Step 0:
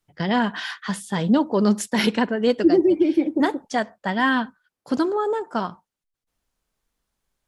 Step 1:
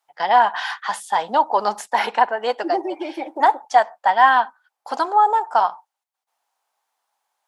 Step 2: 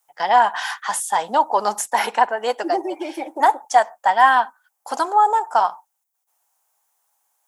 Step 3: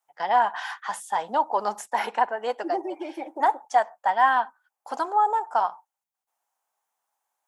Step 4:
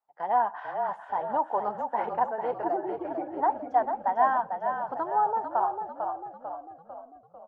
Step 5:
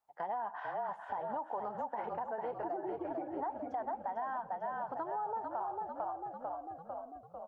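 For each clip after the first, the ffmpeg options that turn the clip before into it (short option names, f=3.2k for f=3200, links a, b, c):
-filter_complex "[0:a]acrossover=split=2200[a][b];[b]alimiter=level_in=1.5dB:limit=-24dB:level=0:latency=1:release=494,volume=-1.5dB[c];[a][c]amix=inputs=2:normalize=0,highpass=f=810:t=q:w=4.9,volume=2dB"
-af "aexciter=amount=3.4:drive=6.2:freq=6k"
-af "highshelf=f=4.5k:g=-11,volume=-5.5dB"
-filter_complex "[0:a]lowpass=1.1k,asplit=2[a][b];[b]asplit=6[c][d][e][f][g][h];[c]adelay=447,afreqshift=-40,volume=-6dB[i];[d]adelay=894,afreqshift=-80,volume=-11.7dB[j];[e]adelay=1341,afreqshift=-120,volume=-17.4dB[k];[f]adelay=1788,afreqshift=-160,volume=-23dB[l];[g]adelay=2235,afreqshift=-200,volume=-28.7dB[m];[h]adelay=2682,afreqshift=-240,volume=-34.4dB[n];[i][j][k][l][m][n]amix=inputs=6:normalize=0[o];[a][o]amix=inputs=2:normalize=0,volume=-2.5dB"
-af "equalizer=f=62:w=0.64:g=7,alimiter=limit=-22dB:level=0:latency=1:release=71,acompressor=threshold=-41dB:ratio=2.5,volume=1.5dB"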